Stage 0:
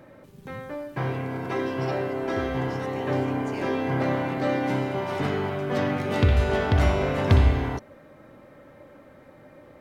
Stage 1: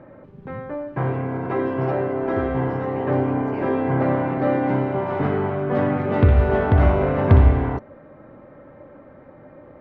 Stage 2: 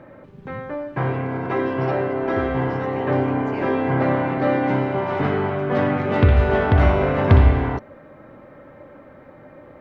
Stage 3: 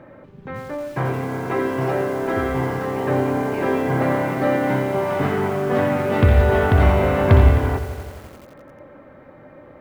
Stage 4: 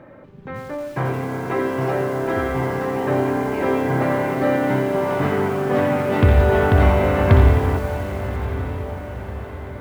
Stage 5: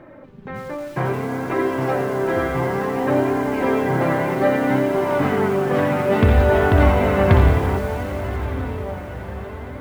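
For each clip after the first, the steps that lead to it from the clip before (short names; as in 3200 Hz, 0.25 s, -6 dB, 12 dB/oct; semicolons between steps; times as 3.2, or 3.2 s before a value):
LPF 1500 Hz 12 dB/oct; gain +5 dB
high shelf 2100 Hz +10.5 dB
lo-fi delay 87 ms, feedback 80%, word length 6-bit, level -12 dB
diffused feedback echo 1.137 s, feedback 50%, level -11 dB
flange 0.6 Hz, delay 2.7 ms, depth 3.6 ms, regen +52%; gain +5 dB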